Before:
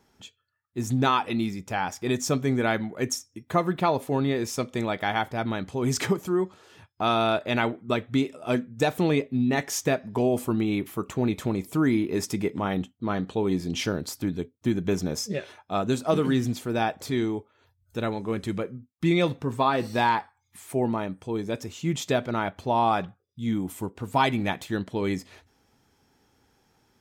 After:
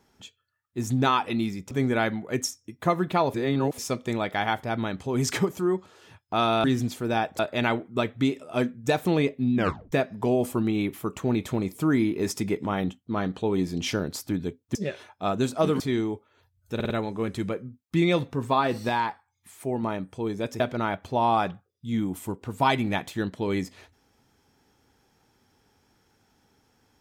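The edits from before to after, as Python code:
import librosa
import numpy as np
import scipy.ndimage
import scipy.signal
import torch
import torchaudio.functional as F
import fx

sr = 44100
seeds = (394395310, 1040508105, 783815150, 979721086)

y = fx.edit(x, sr, fx.cut(start_s=1.71, length_s=0.68),
    fx.reverse_span(start_s=4.02, length_s=0.44),
    fx.tape_stop(start_s=9.48, length_s=0.37),
    fx.cut(start_s=14.68, length_s=0.56),
    fx.move(start_s=16.29, length_s=0.75, to_s=7.32),
    fx.stutter(start_s=17.99, slice_s=0.05, count=4),
    fx.clip_gain(start_s=19.98, length_s=0.94, db=-3.5),
    fx.cut(start_s=21.69, length_s=0.45), tone=tone)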